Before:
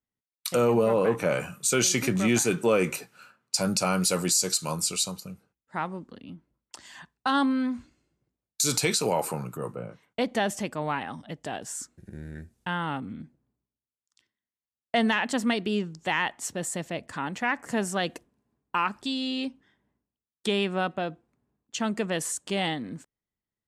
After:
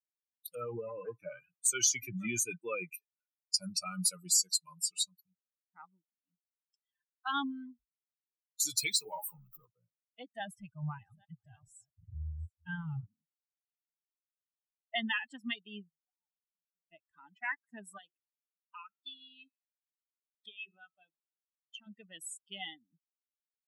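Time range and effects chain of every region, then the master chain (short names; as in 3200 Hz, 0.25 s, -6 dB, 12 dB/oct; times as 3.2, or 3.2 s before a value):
8.77–9.66 zero-crossing step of -34 dBFS + notches 60/120/180/240/300/360/420/480/540 Hz
10.4–13.06 reverse delay 0.426 s, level -10 dB + resonant low shelf 180 Hz +11.5 dB, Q 1.5
15.89–16.92 steep low-pass 790 Hz + compressor 4:1, threshold -47 dBFS
17.98–21.87 notches 50/100/150/200/250/300/350/400 Hz + resonator 72 Hz, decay 0.81 s, mix 50% + three-band squash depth 70%
whole clip: per-bin expansion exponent 3; passive tone stack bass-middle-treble 5-5-5; AGC gain up to 14 dB; gain -5.5 dB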